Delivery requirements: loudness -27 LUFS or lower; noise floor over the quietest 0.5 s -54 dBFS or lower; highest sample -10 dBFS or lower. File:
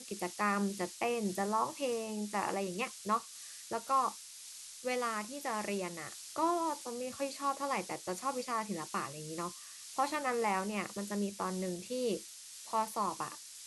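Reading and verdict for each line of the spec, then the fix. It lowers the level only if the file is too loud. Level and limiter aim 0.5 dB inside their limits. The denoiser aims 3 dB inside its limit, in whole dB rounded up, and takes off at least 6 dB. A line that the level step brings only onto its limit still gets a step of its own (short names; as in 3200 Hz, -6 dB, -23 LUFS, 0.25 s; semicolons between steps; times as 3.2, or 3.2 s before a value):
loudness -36.0 LUFS: OK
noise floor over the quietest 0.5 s -50 dBFS: fail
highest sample -19.0 dBFS: OK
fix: denoiser 7 dB, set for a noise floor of -50 dBFS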